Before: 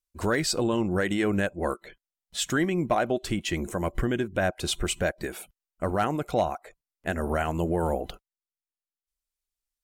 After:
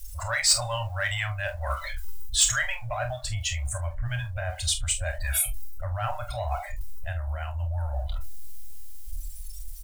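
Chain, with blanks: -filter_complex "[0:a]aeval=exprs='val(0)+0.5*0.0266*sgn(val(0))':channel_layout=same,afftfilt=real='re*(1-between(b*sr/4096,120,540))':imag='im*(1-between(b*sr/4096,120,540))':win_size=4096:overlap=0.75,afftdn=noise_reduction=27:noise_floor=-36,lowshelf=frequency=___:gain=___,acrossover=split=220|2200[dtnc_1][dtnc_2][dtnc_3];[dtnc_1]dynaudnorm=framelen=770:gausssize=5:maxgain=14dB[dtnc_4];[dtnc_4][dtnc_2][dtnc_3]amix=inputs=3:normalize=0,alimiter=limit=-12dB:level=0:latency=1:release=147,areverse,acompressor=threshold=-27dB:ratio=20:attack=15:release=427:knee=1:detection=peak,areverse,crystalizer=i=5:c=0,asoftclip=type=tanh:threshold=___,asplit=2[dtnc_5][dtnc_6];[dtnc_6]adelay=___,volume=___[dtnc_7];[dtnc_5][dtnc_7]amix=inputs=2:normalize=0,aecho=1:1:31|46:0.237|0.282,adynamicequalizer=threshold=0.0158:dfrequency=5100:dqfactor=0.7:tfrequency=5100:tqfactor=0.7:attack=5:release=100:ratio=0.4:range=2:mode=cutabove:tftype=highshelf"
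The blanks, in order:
110, 6, -11.5dB, 26, -11dB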